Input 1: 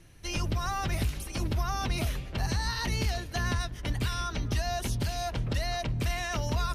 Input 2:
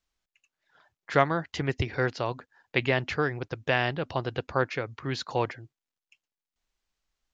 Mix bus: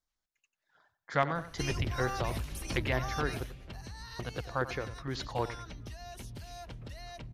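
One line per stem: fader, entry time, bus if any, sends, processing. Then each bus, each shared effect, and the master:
0:03.29 0 dB → 0:03.55 −8.5 dB, 1.35 s, no send, no echo send, downward compressor, threshold −33 dBFS, peak gain reduction 9 dB
−5.0 dB, 0.00 s, muted 0:03.46–0:04.19, no send, echo send −13.5 dB, auto-filter notch square 6.5 Hz 370–2,700 Hz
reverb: not used
echo: repeating echo 92 ms, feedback 25%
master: no processing

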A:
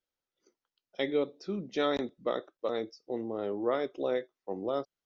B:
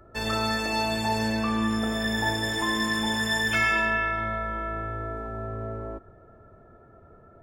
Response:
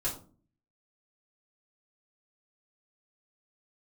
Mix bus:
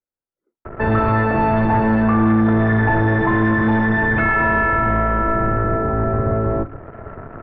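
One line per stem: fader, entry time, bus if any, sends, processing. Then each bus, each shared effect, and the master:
−18.0 dB, 0.00 s, no send, low-shelf EQ 490 Hz +5.5 dB
+2.5 dB, 0.65 s, send −19 dB, sub-octave generator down 1 octave, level −2 dB; leveller curve on the samples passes 3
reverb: on, RT60 0.40 s, pre-delay 3 ms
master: low-pass filter 1,700 Hz 24 dB per octave; multiband upward and downward compressor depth 40%

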